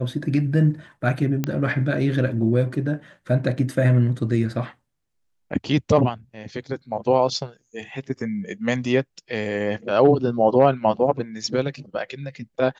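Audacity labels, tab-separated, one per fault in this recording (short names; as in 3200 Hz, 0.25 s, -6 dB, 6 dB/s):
1.440000	1.440000	pop -10 dBFS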